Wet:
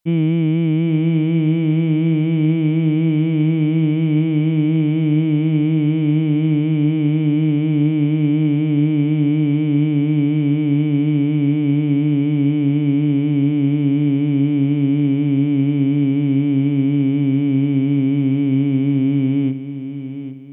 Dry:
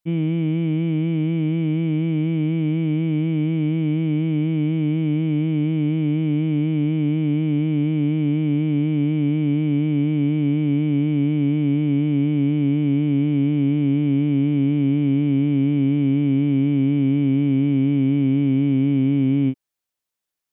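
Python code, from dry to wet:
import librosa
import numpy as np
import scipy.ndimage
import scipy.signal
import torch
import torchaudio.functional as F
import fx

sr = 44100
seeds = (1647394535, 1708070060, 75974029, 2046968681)

p1 = fx.rider(x, sr, range_db=10, speed_s=0.5)
p2 = p1 + fx.echo_feedback(p1, sr, ms=806, feedback_pct=35, wet_db=-11, dry=0)
y = F.gain(torch.from_numpy(p2), 3.0).numpy()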